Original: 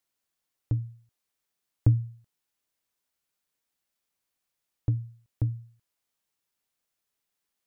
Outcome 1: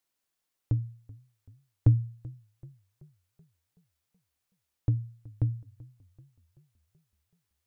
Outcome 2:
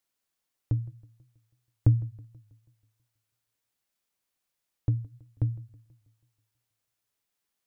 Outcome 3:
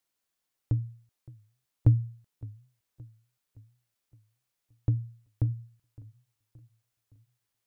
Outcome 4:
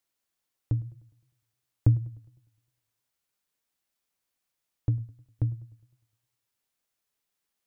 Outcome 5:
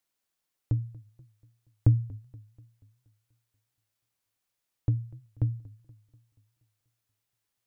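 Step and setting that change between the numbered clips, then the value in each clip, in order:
feedback echo with a swinging delay time, delay time: 379, 162, 568, 102, 240 milliseconds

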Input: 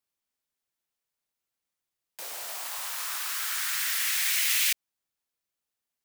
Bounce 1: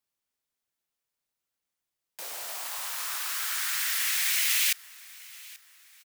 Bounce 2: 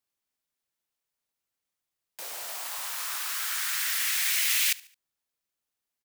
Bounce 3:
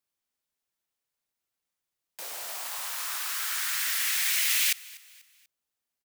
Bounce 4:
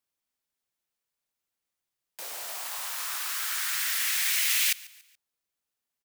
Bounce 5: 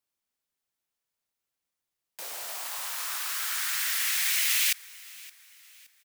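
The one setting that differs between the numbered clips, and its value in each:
repeating echo, delay time: 834, 72, 244, 142, 569 milliseconds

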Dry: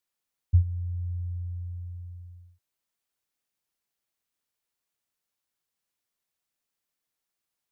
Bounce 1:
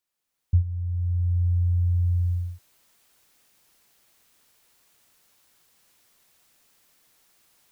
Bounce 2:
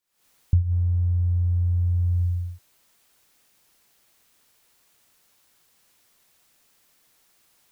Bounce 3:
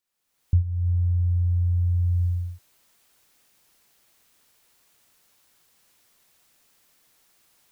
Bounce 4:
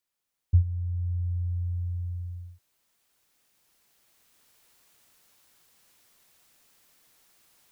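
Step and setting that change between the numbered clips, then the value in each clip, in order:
camcorder AGC, rising by: 14, 88, 35, 5.5 dB per second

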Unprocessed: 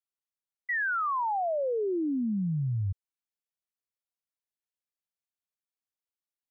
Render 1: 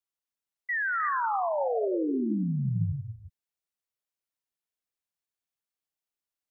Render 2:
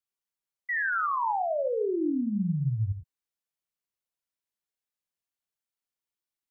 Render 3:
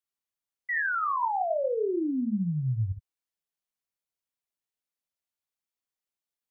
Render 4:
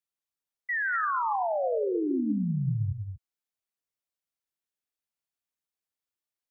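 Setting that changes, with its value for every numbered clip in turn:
reverb whose tail is shaped and stops, gate: 380, 120, 80, 260 milliseconds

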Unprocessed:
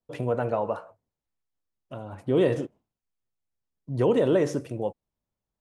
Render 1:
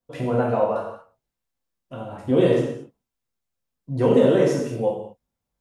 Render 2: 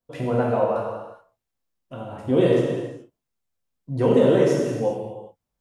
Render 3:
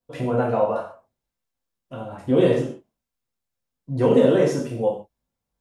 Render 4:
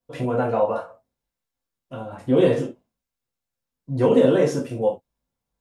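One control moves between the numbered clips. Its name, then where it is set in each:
reverb whose tail is shaped and stops, gate: 260, 450, 170, 100 milliseconds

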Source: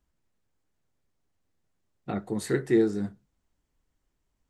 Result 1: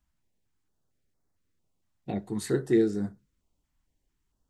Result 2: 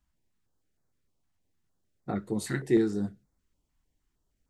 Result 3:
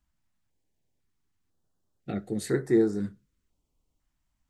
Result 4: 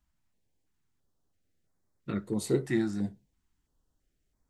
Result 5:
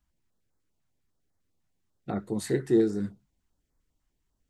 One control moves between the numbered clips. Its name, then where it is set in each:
notch on a step sequencer, speed: 4.4, 6.5, 2, 3, 10 Hertz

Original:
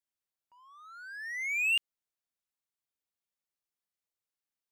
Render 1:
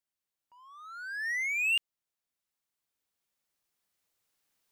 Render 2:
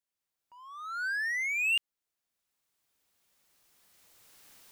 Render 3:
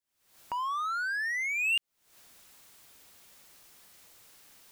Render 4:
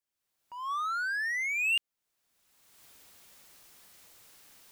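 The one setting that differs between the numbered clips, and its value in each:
camcorder AGC, rising by: 5.1, 13, 90, 33 dB per second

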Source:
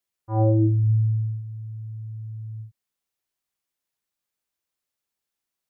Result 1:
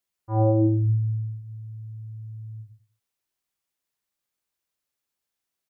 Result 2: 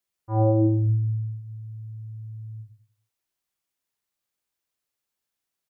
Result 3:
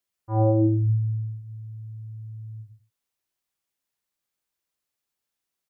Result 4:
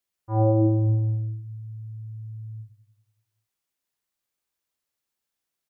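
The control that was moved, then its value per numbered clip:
repeating echo, feedback: 23, 34, 15, 60%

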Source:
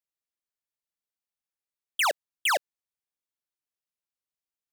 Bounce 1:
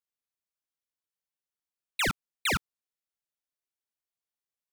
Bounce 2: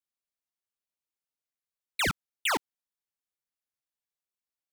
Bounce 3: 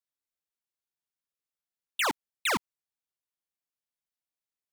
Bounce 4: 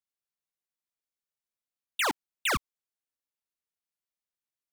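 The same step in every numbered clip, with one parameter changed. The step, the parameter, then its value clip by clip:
ring modulator whose carrier an LFO sweeps, at: 0.43, 1, 1.7, 0.68 Hertz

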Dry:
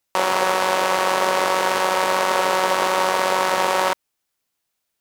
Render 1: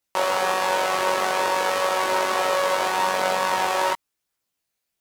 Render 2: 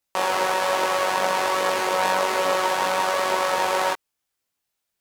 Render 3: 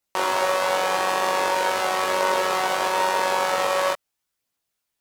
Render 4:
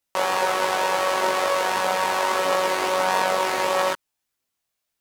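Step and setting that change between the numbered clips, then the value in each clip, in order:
multi-voice chorus, speed: 0.46, 1.2, 0.22, 0.79 Hertz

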